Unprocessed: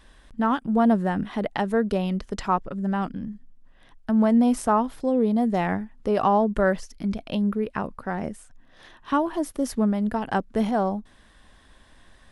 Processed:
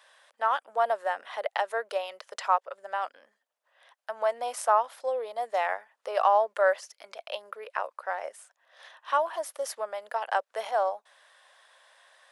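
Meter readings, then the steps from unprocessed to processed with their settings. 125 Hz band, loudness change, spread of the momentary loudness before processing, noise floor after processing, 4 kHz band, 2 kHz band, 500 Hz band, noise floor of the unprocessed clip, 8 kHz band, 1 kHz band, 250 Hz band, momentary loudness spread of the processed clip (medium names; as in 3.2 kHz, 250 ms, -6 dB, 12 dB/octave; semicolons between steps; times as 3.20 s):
under -40 dB, -5.0 dB, 10 LU, -81 dBFS, -0.5 dB, 0.0 dB, -3.0 dB, -55 dBFS, -1.0 dB, -0.5 dB, under -35 dB, 14 LU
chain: elliptic high-pass 550 Hz, stop band 80 dB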